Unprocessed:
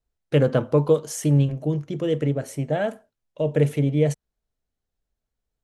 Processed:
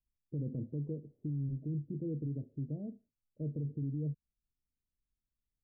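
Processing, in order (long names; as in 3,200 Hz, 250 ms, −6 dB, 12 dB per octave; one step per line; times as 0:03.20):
inverse Chebyshev low-pass filter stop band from 1,900 Hz, stop band 80 dB
brickwall limiter −22 dBFS, peak gain reduction 11.5 dB
level −8 dB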